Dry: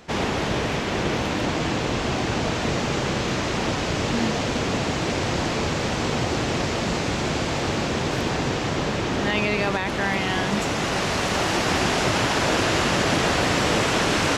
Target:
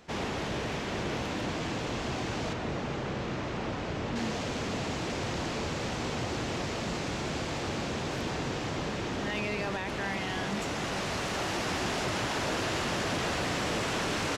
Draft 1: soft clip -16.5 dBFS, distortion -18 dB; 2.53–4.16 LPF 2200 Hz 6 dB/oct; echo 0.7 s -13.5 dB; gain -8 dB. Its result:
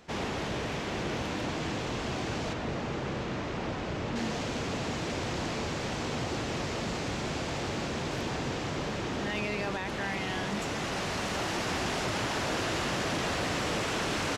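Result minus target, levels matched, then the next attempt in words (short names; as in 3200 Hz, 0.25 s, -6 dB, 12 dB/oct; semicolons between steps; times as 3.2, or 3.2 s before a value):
echo 0.267 s late
soft clip -16.5 dBFS, distortion -18 dB; 2.53–4.16 LPF 2200 Hz 6 dB/oct; echo 0.433 s -13.5 dB; gain -8 dB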